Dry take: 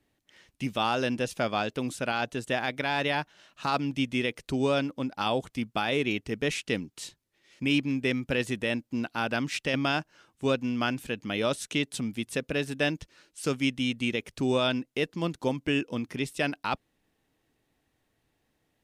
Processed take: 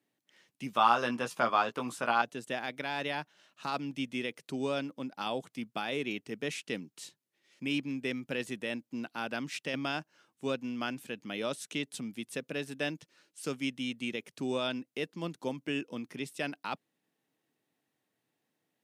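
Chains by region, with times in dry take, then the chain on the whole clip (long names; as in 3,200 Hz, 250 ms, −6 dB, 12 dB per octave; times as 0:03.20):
0:00.73–0:02.22: parametric band 1,100 Hz +14.5 dB 1 octave + double-tracking delay 17 ms −6 dB
whole clip: high-pass filter 140 Hz 24 dB per octave; high-shelf EQ 9,800 Hz +4 dB; level −7 dB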